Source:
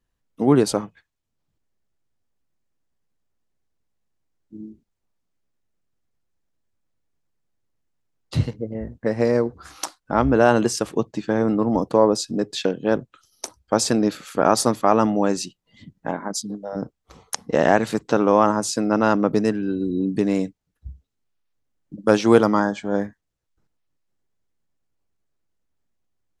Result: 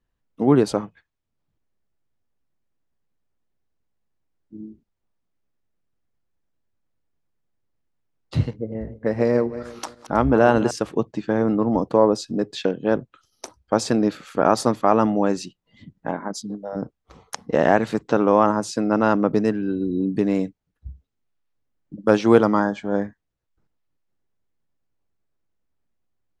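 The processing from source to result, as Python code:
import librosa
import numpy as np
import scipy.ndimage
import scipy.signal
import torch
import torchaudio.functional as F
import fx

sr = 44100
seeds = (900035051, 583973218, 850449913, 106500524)

y = fx.reverse_delay_fb(x, sr, ms=160, feedback_pct=43, wet_db=-13, at=(8.51, 10.71))
y = fx.high_shelf(y, sr, hz=5500.0, db=-12.0)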